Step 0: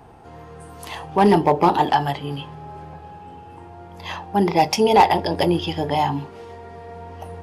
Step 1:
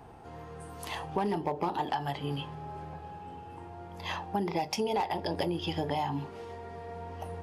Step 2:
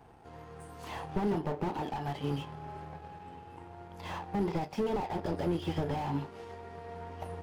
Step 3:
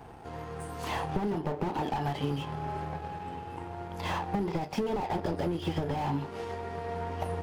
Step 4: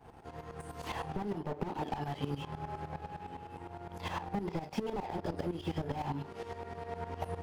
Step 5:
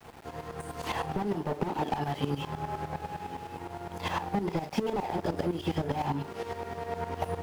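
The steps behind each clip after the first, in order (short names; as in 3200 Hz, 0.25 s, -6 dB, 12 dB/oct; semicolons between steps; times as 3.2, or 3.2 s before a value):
compressor 8:1, threshold -23 dBFS, peak gain reduction 14 dB; gain -4.5 dB
power-law curve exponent 1.4; slew limiter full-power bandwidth 8.1 Hz; gain +6.5 dB
compressor 10:1, threshold -35 dBFS, peak gain reduction 10 dB; gain +8.5 dB
tremolo saw up 9.8 Hz, depth 80%; gain -2 dB
low shelf 78 Hz -7 dB; sample gate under -56 dBFS; gain +6.5 dB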